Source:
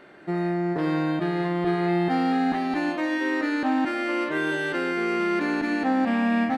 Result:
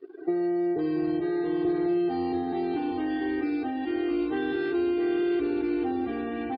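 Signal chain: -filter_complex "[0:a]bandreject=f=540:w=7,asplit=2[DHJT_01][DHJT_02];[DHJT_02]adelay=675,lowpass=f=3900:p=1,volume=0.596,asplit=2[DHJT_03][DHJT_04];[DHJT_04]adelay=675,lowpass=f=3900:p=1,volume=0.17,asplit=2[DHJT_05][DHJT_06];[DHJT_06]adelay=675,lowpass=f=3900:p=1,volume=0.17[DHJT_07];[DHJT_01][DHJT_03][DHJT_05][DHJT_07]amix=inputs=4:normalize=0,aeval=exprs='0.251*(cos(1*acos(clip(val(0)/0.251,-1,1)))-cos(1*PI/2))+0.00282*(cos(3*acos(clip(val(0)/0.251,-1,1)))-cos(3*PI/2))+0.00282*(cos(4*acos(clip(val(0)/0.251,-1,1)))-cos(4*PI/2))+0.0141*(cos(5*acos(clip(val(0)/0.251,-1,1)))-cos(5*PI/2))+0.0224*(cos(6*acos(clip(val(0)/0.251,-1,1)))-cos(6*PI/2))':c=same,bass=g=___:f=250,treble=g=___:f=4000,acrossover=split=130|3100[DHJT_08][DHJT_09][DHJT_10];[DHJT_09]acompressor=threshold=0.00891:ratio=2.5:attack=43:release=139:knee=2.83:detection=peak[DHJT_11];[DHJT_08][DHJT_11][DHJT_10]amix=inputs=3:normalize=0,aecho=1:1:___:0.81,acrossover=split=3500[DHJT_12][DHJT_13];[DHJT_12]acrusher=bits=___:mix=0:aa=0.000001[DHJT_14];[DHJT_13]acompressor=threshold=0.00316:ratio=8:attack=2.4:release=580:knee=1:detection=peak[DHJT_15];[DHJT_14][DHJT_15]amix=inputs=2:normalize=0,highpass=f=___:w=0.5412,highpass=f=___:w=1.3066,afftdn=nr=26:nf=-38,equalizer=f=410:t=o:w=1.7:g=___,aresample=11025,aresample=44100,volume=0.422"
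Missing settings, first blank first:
2, 12, 2.6, 6, 66, 66, 14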